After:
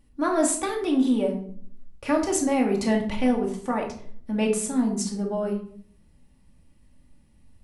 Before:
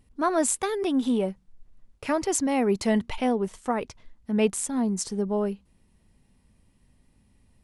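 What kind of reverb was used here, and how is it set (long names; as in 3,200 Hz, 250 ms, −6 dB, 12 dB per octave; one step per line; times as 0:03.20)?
rectangular room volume 740 cubic metres, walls furnished, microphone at 2.4 metres
level −2 dB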